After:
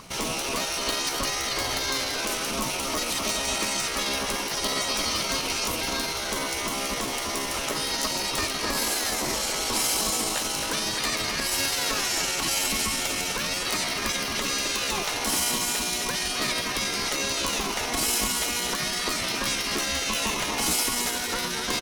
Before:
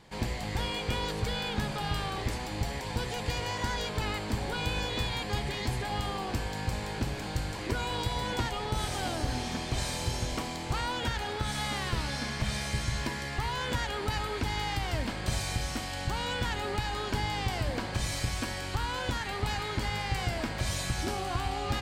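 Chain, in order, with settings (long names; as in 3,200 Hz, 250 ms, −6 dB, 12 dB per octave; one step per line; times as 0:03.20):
dynamic equaliser 110 Hz, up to +5 dB, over −43 dBFS, Q 1.3
slap from a distant wall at 44 metres, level −7 dB
in parallel at −0.5 dB: brickwall limiter −27 dBFS, peak gain reduction 12.5 dB
on the sum: pitch shifter +4.5 semitones
steady tone 1,100 Hz −32 dBFS
gate on every frequency bin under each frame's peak −10 dB weak
high-shelf EQ 5,100 Hz +10 dB
highs frequency-modulated by the lows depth 0.16 ms
level +3 dB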